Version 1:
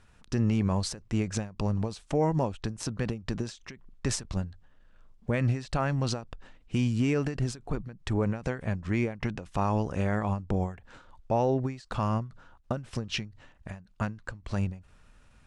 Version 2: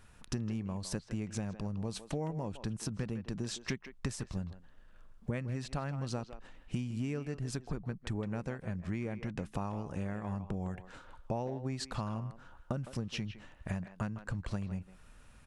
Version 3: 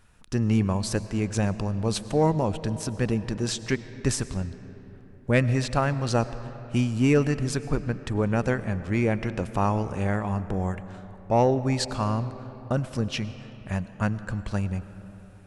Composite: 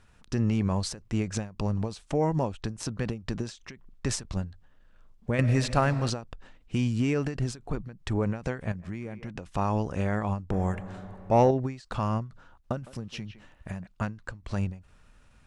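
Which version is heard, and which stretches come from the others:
1
5.39–6.1 from 3
8.72–9.35 from 2
10.52–11.51 from 3
12.82–13.87 from 2

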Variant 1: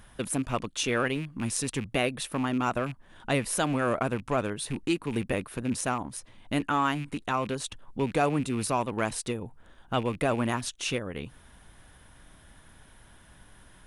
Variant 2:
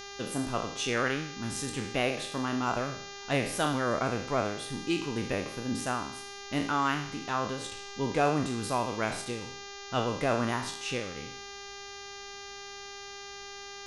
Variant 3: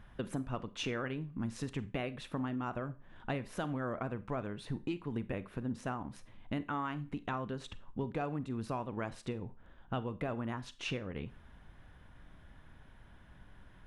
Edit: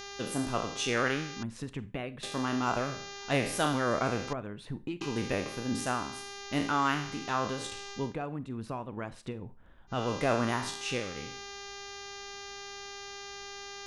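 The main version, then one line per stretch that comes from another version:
2
1.43–2.23 from 3
4.33–5.01 from 3
8.04–9.99 from 3, crossfade 0.24 s
not used: 1

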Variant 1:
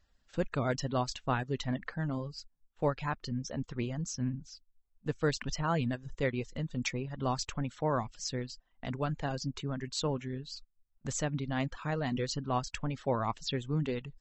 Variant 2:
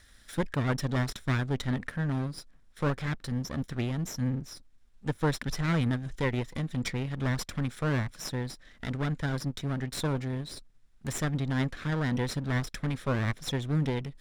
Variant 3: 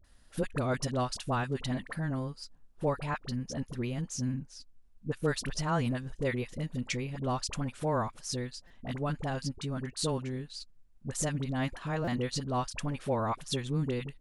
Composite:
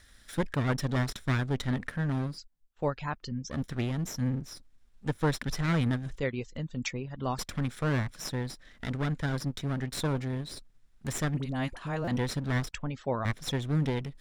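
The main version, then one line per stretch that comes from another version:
2
2.36–3.51 from 1, crossfade 0.06 s
6.18–7.38 from 1
11.37–12.11 from 3
12.71–13.25 from 1

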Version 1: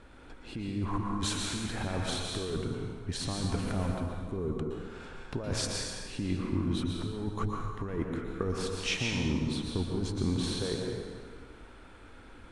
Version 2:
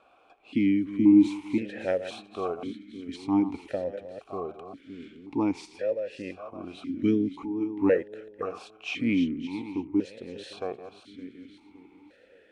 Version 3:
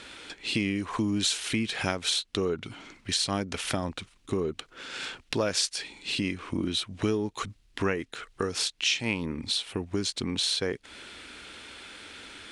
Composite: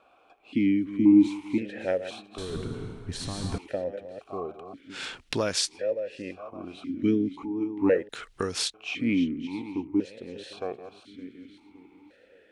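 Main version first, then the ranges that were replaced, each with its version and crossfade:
2
2.38–3.58 from 1
4.94–5.69 from 3, crossfade 0.10 s
8.09–8.74 from 3

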